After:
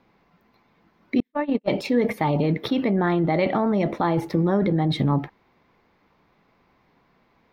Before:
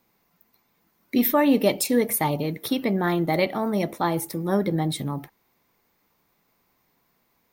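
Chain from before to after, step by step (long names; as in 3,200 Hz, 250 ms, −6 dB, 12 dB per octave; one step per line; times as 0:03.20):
0:01.20–0:01.68: noise gate −15 dBFS, range −56 dB
in parallel at +1 dB: compressor whose output falls as the input rises −28 dBFS, ratio −0.5
on the sum: high-frequency loss of the air 260 metres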